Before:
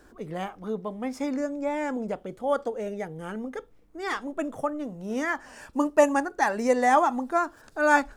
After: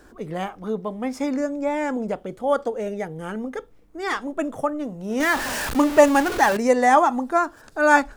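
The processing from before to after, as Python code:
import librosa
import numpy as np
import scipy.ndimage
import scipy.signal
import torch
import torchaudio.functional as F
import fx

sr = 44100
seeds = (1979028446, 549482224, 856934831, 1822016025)

y = fx.zero_step(x, sr, step_db=-27.0, at=(5.2, 6.57))
y = y * librosa.db_to_amplitude(4.5)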